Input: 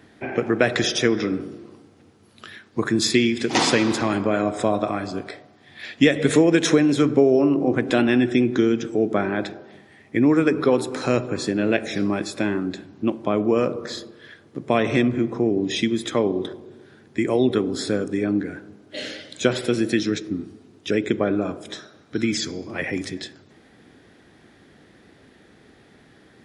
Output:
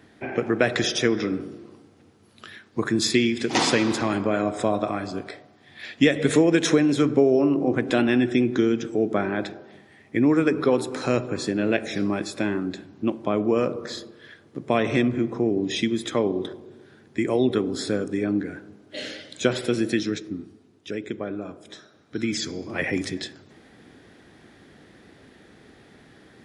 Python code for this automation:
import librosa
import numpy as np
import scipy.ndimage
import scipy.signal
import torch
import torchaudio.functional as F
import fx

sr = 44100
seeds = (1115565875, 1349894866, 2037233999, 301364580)

y = fx.gain(x, sr, db=fx.line((19.88, -2.0), (20.96, -9.5), (21.57, -9.5), (22.82, 1.0)))